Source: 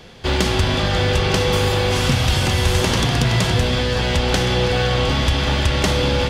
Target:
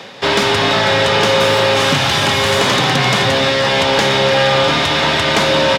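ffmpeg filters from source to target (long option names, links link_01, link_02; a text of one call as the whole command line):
ffmpeg -i in.wav -filter_complex "[0:a]highpass=frequency=97:width=0.5412,highpass=frequency=97:width=1.3066,areverse,acompressor=mode=upward:threshold=-28dB:ratio=2.5,areverse,asplit=2[link_01][link_02];[link_02]highpass=frequency=720:poles=1,volume=16dB,asoftclip=type=tanh:threshold=-3dB[link_03];[link_01][link_03]amix=inputs=2:normalize=0,lowpass=frequency=2400:poles=1,volume=-6dB,asplit=2[link_04][link_05];[link_05]adelay=140,highpass=300,lowpass=3400,asoftclip=type=hard:threshold=-13.5dB,volume=-12dB[link_06];[link_04][link_06]amix=inputs=2:normalize=0,asetrate=48000,aresample=44100,volume=2dB" out.wav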